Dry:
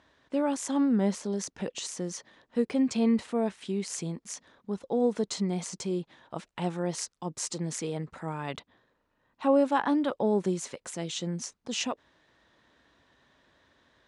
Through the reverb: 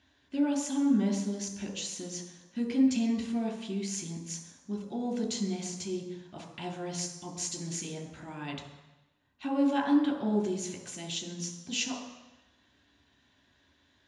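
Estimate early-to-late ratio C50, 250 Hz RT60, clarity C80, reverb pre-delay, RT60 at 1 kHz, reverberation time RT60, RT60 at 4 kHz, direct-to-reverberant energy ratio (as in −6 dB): 7.5 dB, 0.95 s, 9.5 dB, 3 ms, 1.1 s, 1.0 s, 1.1 s, 1.5 dB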